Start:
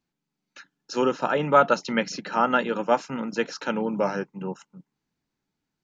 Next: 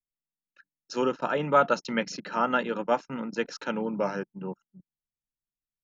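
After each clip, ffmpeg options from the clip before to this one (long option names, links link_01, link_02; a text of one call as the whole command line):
ffmpeg -i in.wav -af "bandreject=frequency=800:width=16,anlmdn=0.631,volume=-3.5dB" out.wav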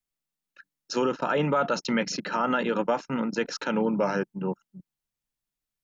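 ffmpeg -i in.wav -af "alimiter=limit=-21.5dB:level=0:latency=1:release=37,volume=6dB" out.wav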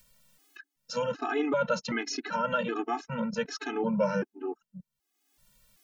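ffmpeg -i in.wav -af "acompressor=mode=upward:threshold=-39dB:ratio=2.5,afftfilt=real='re*gt(sin(2*PI*1.3*pts/sr)*(1-2*mod(floor(b*sr/1024/220),2)),0)':imag='im*gt(sin(2*PI*1.3*pts/sr)*(1-2*mod(floor(b*sr/1024/220),2)),0)':win_size=1024:overlap=0.75" out.wav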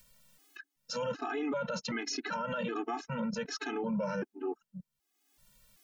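ffmpeg -i in.wav -af "alimiter=level_in=3dB:limit=-24dB:level=0:latency=1:release=35,volume=-3dB" out.wav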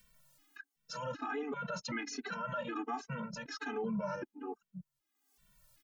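ffmpeg -i in.wav -filter_complex "[0:a]asplit=2[link_01][link_02];[link_02]adelay=2.2,afreqshift=-1.3[link_03];[link_01][link_03]amix=inputs=2:normalize=1" out.wav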